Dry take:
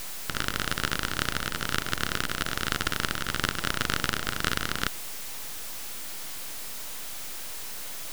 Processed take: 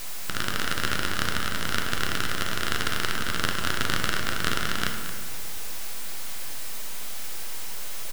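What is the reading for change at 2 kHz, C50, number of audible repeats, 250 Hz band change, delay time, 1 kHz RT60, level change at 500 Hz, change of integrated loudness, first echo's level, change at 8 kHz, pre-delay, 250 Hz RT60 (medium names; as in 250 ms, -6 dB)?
+2.0 dB, 4.5 dB, 1, +1.5 dB, 226 ms, 1.5 s, +2.0 dB, +1.5 dB, -12.0 dB, +1.0 dB, 9 ms, 2.0 s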